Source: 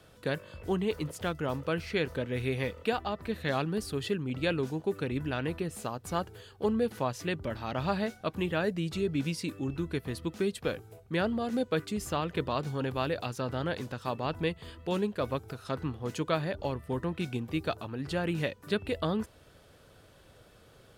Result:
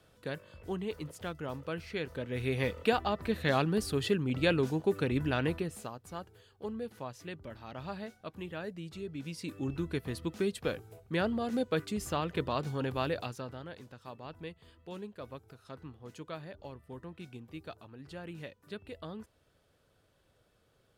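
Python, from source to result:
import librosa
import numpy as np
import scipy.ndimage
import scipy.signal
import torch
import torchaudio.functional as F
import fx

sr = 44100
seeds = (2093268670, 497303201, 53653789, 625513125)

y = fx.gain(x, sr, db=fx.line((2.08, -6.5), (2.72, 2.0), (5.47, 2.0), (6.09, -10.5), (9.2, -10.5), (9.63, -1.5), (13.18, -1.5), (13.65, -13.0)))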